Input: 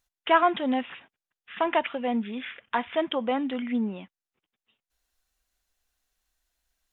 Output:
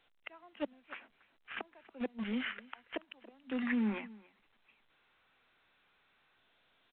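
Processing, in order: flipped gate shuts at -19 dBFS, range -33 dB; steep high-pass 200 Hz 96 dB/oct; in parallel at -6 dB: bit-crush 6-bit; on the sum: echo 0.281 s -23 dB; formant shift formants -2 st; limiter -22 dBFS, peak gain reduction 7 dB; spectral gain 3.67–6.37, 770–2700 Hz +7 dB; gain -4 dB; A-law 64 kbps 8000 Hz

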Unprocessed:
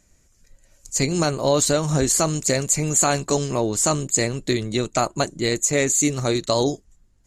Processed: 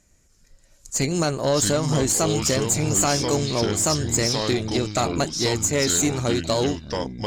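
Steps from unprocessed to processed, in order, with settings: echoes that change speed 0.296 s, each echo -5 st, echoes 2, each echo -6 dB; tube stage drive 12 dB, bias 0.3

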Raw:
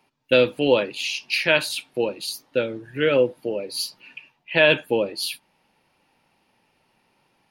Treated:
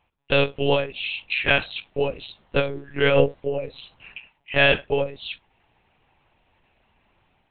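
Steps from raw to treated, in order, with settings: AGC gain up to 5 dB; monotone LPC vocoder at 8 kHz 140 Hz; gain -3 dB

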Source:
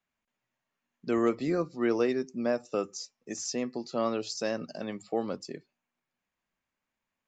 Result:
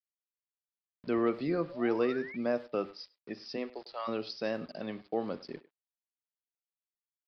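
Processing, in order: 3.56–4.07 HPF 220 Hz -> 900 Hz 24 dB/oct; Schroeder reverb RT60 0.36 s, combs from 29 ms, DRR 17 dB; sample gate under -48.5 dBFS; 1.69–2.37 painted sound rise 510–2400 Hz -43 dBFS; downsampling 11025 Hz; speakerphone echo 0.1 s, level -18 dB; gain -2.5 dB

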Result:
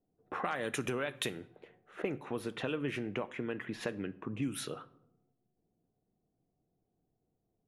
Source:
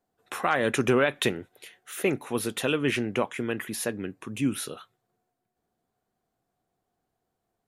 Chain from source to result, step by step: low-pass opened by the level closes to 390 Hz, open at -23.5 dBFS; high shelf 3600 Hz +4 dB, from 2.02 s -9.5 dB, from 3.69 s +3 dB; compressor 4:1, threshold -38 dBFS, peak gain reduction 17 dB; shoebox room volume 1900 m³, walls furnished, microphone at 0.49 m; gain +3 dB

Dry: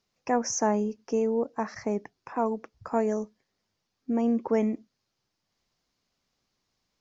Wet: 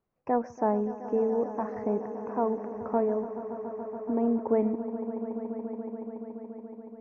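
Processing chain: LPF 1100 Hz 12 dB/oct; bell 220 Hz -2.5 dB 0.4 oct; on a send: swelling echo 0.142 s, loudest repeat 5, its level -16 dB

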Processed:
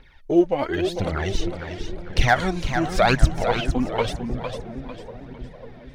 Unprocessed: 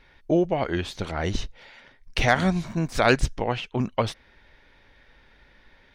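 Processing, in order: dark delay 0.547 s, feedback 63%, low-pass 560 Hz, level -10.5 dB; phaser 0.93 Hz, delay 4 ms, feedback 66%; warbling echo 0.454 s, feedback 38%, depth 143 cents, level -8 dB; gain -1 dB

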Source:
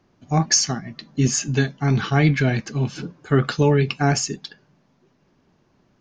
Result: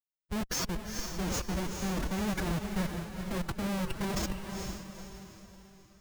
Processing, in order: Schmitt trigger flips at -20.5 dBFS; diffused feedback echo 0.451 s, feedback 42%, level -5 dB; formant-preserving pitch shift +5.5 st; gain -9 dB

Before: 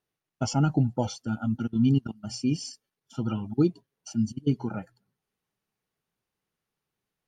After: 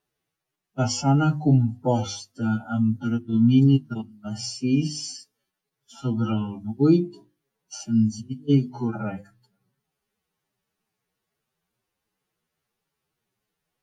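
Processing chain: time stretch by phase-locked vocoder 1.9×; notches 50/100/150/200/250/300/350 Hz; gain +5 dB

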